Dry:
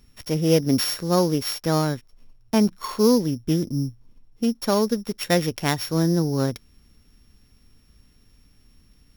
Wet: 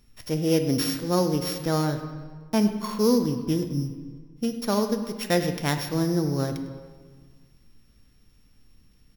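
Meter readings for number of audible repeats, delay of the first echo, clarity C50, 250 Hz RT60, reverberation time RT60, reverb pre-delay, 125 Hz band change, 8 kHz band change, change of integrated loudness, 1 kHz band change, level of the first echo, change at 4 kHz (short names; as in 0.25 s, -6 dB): 1, 0.102 s, 8.5 dB, 1.9 s, 1.6 s, 6 ms, -3.0 dB, -3.5 dB, -3.0 dB, -2.5 dB, -16.5 dB, -4.0 dB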